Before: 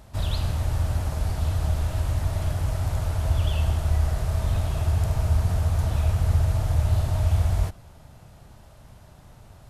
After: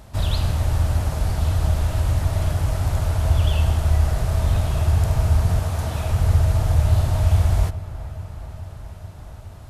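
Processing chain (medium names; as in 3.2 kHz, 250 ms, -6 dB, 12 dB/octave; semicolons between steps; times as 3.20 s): 5.59–6.10 s: high-pass 180 Hz 6 dB/octave; on a send: feedback echo behind a low-pass 424 ms, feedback 76%, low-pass 2.2 kHz, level -16 dB; on the sum: trim +4.5 dB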